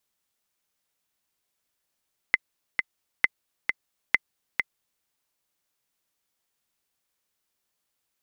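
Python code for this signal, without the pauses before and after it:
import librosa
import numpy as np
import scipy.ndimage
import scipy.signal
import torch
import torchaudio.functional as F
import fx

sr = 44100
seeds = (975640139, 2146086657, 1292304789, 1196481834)

y = fx.click_track(sr, bpm=133, beats=2, bars=3, hz=2050.0, accent_db=5.0, level_db=-5.0)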